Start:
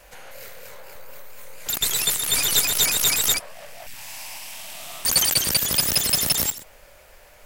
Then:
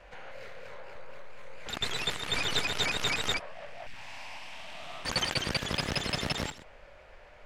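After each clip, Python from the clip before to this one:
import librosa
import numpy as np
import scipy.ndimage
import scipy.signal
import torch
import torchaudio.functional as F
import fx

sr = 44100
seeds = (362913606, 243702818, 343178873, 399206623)

y = scipy.signal.sosfilt(scipy.signal.butter(2, 2900.0, 'lowpass', fs=sr, output='sos'), x)
y = F.gain(torch.from_numpy(y), -2.0).numpy()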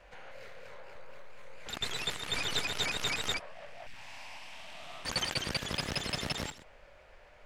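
y = fx.high_shelf(x, sr, hz=5900.0, db=4.5)
y = F.gain(torch.from_numpy(y), -4.0).numpy()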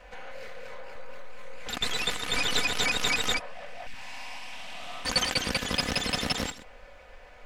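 y = x + 0.47 * np.pad(x, (int(4.0 * sr / 1000.0), 0))[:len(x)]
y = F.gain(torch.from_numpy(y), 5.5).numpy()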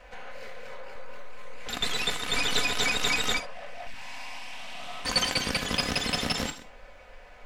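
y = fx.rev_gated(x, sr, seeds[0], gate_ms=90, shape='flat', drr_db=8.5)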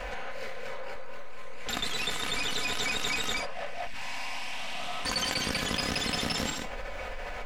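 y = fx.env_flatten(x, sr, amount_pct=70)
y = F.gain(torch.from_numpy(y), -7.0).numpy()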